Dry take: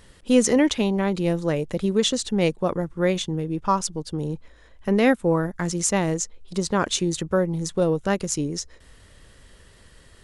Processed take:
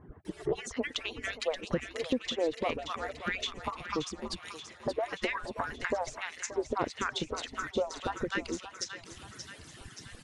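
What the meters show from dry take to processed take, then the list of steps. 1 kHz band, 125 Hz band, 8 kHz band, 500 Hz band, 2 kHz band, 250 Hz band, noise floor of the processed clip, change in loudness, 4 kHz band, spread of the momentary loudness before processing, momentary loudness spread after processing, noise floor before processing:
-7.5 dB, -18.5 dB, -15.0 dB, -10.5 dB, -4.5 dB, -16.0 dB, -54 dBFS, -11.5 dB, -7.0 dB, 10 LU, 12 LU, -52 dBFS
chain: harmonic-percussive separation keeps percussive; bands offset in time lows, highs 250 ms, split 1.2 kHz; compression 2:1, threshold -43 dBFS, peak gain reduction 13 dB; low-pass that closes with the level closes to 2.1 kHz, closed at -33.5 dBFS; on a send: thinning echo 578 ms, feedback 65%, high-pass 970 Hz, level -8.5 dB; on the sum: trim +7.5 dB

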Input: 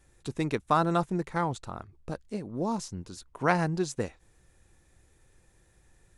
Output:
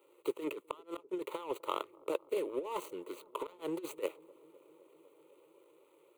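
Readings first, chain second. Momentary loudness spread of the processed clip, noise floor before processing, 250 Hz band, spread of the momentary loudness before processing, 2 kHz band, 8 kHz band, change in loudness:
9 LU, -64 dBFS, -11.0 dB, 15 LU, -15.0 dB, -11.5 dB, -9.5 dB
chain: median filter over 25 samples; high-pass 340 Hz 24 dB/octave; treble shelf 5.2 kHz +6 dB; inverted gate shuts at -17 dBFS, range -38 dB; compressor with a negative ratio -38 dBFS, ratio -0.5; static phaser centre 1.1 kHz, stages 8; on a send: feedback echo behind a low-pass 254 ms, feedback 81%, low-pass 750 Hz, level -23 dB; on the sum: trim +6 dB

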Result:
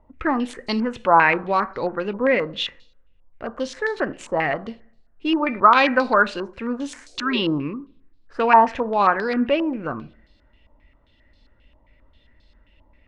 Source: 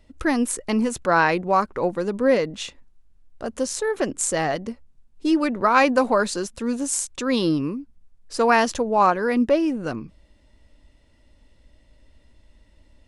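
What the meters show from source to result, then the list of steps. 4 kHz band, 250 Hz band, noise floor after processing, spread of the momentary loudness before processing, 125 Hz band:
+3.0 dB, -1.5 dB, -59 dBFS, 12 LU, -2.0 dB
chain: two-slope reverb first 0.52 s, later 1.5 s, from -27 dB, DRR 13 dB; spectral replace 7.09–7.37 s, 340–780 Hz both; step-sequenced low-pass 7.5 Hz 970–4300 Hz; trim -2 dB

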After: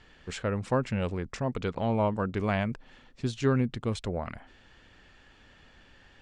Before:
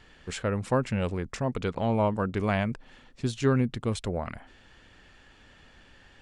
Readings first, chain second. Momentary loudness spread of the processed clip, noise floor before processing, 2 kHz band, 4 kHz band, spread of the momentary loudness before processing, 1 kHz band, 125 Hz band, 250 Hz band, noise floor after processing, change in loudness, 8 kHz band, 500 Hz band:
9 LU, -57 dBFS, -1.5 dB, -1.5 dB, 9 LU, -1.5 dB, -1.5 dB, -1.5 dB, -58 dBFS, -1.5 dB, -4.0 dB, -1.5 dB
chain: low-pass 7.6 kHz 12 dB/octave; trim -1.5 dB

